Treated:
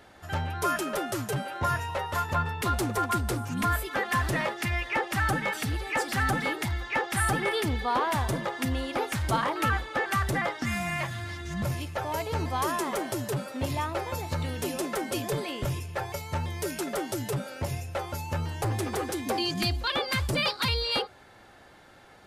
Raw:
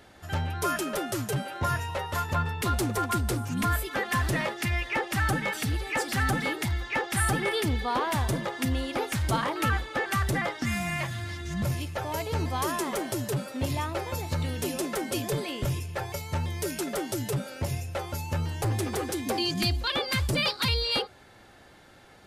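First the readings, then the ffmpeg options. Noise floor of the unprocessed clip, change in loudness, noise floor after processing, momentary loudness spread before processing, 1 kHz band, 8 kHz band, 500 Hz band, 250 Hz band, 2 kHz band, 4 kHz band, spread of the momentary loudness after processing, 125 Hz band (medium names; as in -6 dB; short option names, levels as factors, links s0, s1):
-53 dBFS, -0.5 dB, -53 dBFS, 6 LU, +2.0 dB, -2.0 dB, 0.0 dB, -1.0 dB, +0.5 dB, -1.0 dB, 6 LU, -2.0 dB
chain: -af "equalizer=f=1000:w=0.58:g=4,volume=0.794"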